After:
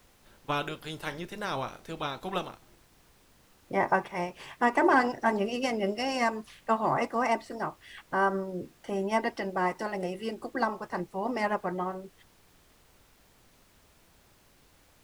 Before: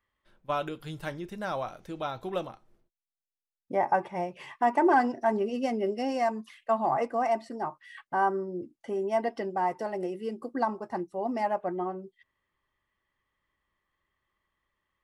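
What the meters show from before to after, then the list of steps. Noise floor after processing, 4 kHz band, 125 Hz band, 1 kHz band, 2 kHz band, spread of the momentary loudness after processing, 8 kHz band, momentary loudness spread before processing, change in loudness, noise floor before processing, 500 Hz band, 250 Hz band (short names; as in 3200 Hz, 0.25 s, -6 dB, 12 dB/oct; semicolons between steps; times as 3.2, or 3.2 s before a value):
-62 dBFS, +7.0 dB, +3.0 dB, -1.0 dB, +5.0 dB, 10 LU, n/a, 11 LU, 0.0 dB, under -85 dBFS, -1.5 dB, 0.0 dB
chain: spectral limiter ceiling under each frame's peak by 14 dB; added noise pink -61 dBFS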